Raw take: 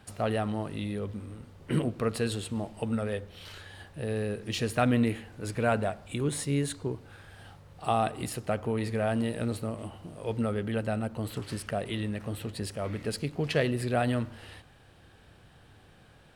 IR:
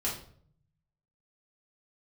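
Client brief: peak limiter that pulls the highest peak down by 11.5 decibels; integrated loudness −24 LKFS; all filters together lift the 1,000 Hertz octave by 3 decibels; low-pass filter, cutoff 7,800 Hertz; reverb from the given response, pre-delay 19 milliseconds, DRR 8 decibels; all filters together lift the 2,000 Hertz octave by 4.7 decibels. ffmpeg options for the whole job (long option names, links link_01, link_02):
-filter_complex "[0:a]lowpass=7800,equalizer=frequency=1000:width_type=o:gain=3.5,equalizer=frequency=2000:width_type=o:gain=5,alimiter=limit=-19dB:level=0:latency=1,asplit=2[link_01][link_02];[1:a]atrim=start_sample=2205,adelay=19[link_03];[link_02][link_03]afir=irnorm=-1:irlink=0,volume=-13.5dB[link_04];[link_01][link_04]amix=inputs=2:normalize=0,volume=8dB"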